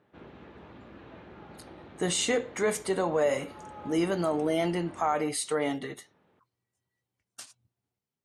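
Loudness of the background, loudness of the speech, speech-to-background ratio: −48.5 LKFS, −29.0 LKFS, 19.5 dB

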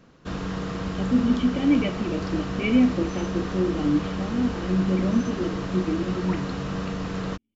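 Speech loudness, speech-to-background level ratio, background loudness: −25.5 LKFS, 5.0 dB, −30.5 LKFS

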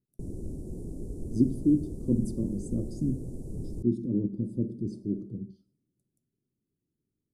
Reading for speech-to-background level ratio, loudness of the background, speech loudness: 10.0 dB, −40.5 LKFS, −30.5 LKFS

